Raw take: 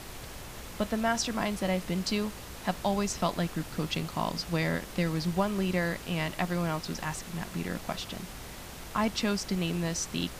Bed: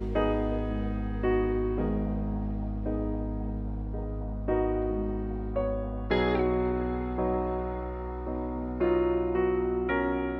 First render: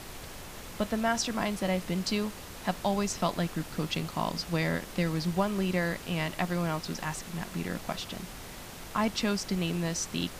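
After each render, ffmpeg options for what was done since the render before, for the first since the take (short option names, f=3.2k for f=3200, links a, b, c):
-af "bandreject=f=60:t=h:w=4,bandreject=f=120:t=h:w=4"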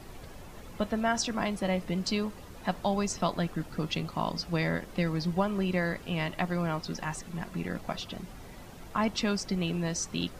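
-af "afftdn=nr=10:nf=-44"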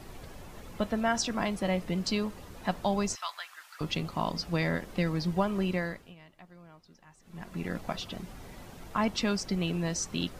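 -filter_complex "[0:a]asettb=1/sr,asplit=3[a][b][c];[a]atrim=end=3.154[d];[b]atrim=start=3.15:end=3.81,asetpts=PTS-STARTPTS,afade=t=in:d=0.004:c=qsin,afade=t=out:st=0.656:d=0.004:c=qsin,highpass=f=1.1k:w=0.5412,highpass=f=1.1k:w=1.3066[e];[c]atrim=start=3.806[f];[d][e]acrossfade=d=0.004:c1=hsin:c2=qsin[g];[g][f]acrossfade=d=0.004:c1=qsin:c2=hsin,asplit=3[h][i][j];[h]atrim=end=6.15,asetpts=PTS-STARTPTS,afade=t=out:st=5.66:d=0.49:silence=0.0749894[k];[i]atrim=start=6.15:end=7.19,asetpts=PTS-STARTPTS,volume=-22.5dB[l];[j]atrim=start=7.19,asetpts=PTS-STARTPTS,afade=t=in:d=0.49:silence=0.0749894[m];[k][l][m]concat=n=3:v=0:a=1"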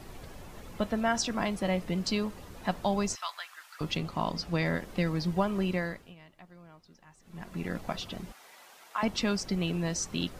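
-filter_complex "[0:a]asettb=1/sr,asplit=3[a][b][c];[a]atrim=end=3.974[d];[b]atrim=start=3.97:end=4.66,asetpts=PTS-STARTPTS,afade=t=in:d=0.004:c=qsin,afade=t=out:st=0.686:d=0.004:c=qsin,highshelf=f=10k:g=-6.5[e];[c]atrim=start=4.656[f];[d][e]acrossfade=d=0.004:c1=hsin:c2=qsin[g];[g][f]acrossfade=d=0.004:c1=qsin:c2=hsin,asettb=1/sr,asplit=3[h][i][j];[h]atrim=end=8.324[k];[i]atrim=start=8.32:end=9.03,asetpts=PTS-STARTPTS,afade=t=in:d=0.004:c=qsin,afade=t=out:st=0.706:d=0.004:c=qsin,highpass=860[l];[j]atrim=start=9.026[m];[k][l]acrossfade=d=0.004:c1=hsin:c2=qsin[n];[n][m]acrossfade=d=0.004:c1=qsin:c2=hsin"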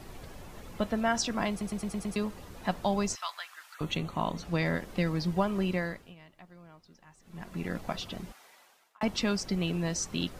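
-filter_complex "[0:a]asettb=1/sr,asplit=3[a][b][c];[a]atrim=end=3.744[d];[b]atrim=start=3.74:end=4.45,asetpts=PTS-STARTPTS,afade=t=in:d=0.004:c=qsin,afade=t=out:st=0.706:d=0.004:c=qsin,asuperstop=centerf=5000:order=4:qfactor=3.8[e];[c]atrim=start=4.446[f];[d][e]acrossfade=d=0.004:c1=hsin:c2=qsin[g];[g][f]acrossfade=d=0.004:c1=qsin:c2=hsin,asplit=8[h][i][j][k][l][m][n][o];[h]atrim=end=1.612[p];[i]atrim=start=1.498:end=1.612[q];[j]atrim=start=1.498:end=1.612[r];[k]atrim=start=1.498:end=1.612[s];[l]atrim=start=1.498:end=1.612[t];[m]atrim=start=1.498:end=1.612[u];[n]atrim=start=2.158:end=9.01,asetpts=PTS-STARTPTS,afade=t=out:st=6.102:d=0.75[v];[o]atrim=start=9.01,asetpts=PTS-STARTPTS,afade=t=in:d=0.004:c=hsin[w];[p][q]acrossfade=d=0.004:c1=hsin:c2=hsin[x];[x][r]acrossfade=d=0.004:c1=hsin:c2=hsin[y];[y][s]acrossfade=d=0.004:c1=hsin:c2=hsin[z];[z][t]acrossfade=d=0.004:c1=hsin:c2=hsin[aa];[aa][u]acrossfade=d=0.004:c1=hsin:c2=hsin[ab];[v][w]concat=n=2:v=0:a=1[ac];[ab][ac]acrossfade=d=0.004:c1=hsin:c2=hsin"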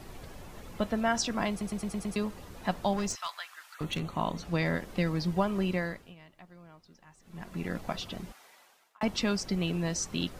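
-filter_complex "[0:a]asettb=1/sr,asplit=3[a][b][c];[a]atrim=end=2.934[d];[b]atrim=start=2.93:end=4.17,asetpts=PTS-STARTPTS,afade=t=in:d=0.004:c=qsin,afade=t=out:st=1.236:d=0.004:c=qsin,asoftclip=type=hard:threshold=-27dB[e];[c]atrim=start=4.166[f];[d][e]acrossfade=d=0.004:c1=hsin:c2=qsin[g];[g][f]acrossfade=d=0.004:c1=qsin:c2=hsin"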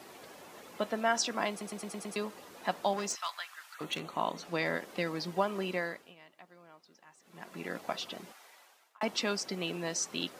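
-af "highpass=330"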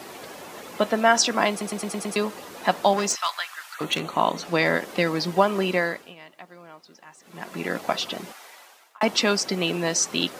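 -af "volume=11dB"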